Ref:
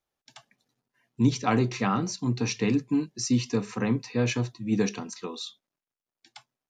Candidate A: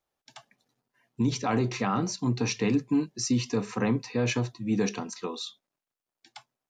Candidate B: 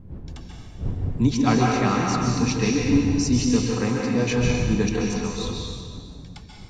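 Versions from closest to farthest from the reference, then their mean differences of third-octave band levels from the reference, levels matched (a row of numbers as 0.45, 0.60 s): A, B; 1.5, 9.0 dB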